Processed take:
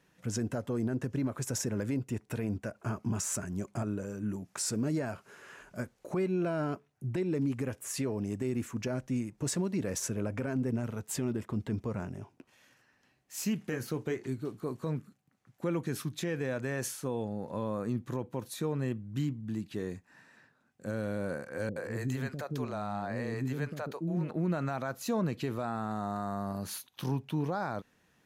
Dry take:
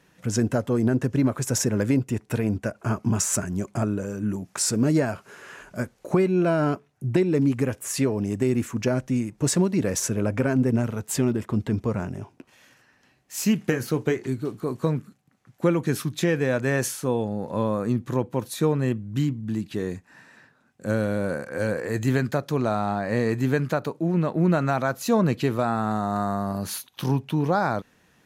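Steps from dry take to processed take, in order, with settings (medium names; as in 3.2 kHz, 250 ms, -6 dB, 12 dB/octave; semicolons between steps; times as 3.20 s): peak limiter -15 dBFS, peak gain reduction 7 dB; 21.69–24.31 s: bands offset in time lows, highs 70 ms, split 390 Hz; trim -8 dB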